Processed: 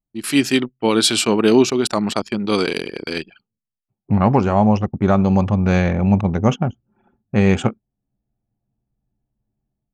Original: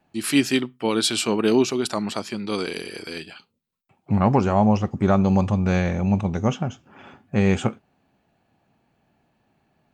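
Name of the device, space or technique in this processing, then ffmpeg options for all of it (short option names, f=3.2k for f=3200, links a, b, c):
voice memo with heavy noise removal: -af "anlmdn=10,dynaudnorm=f=140:g=5:m=11dB,volume=-1dB"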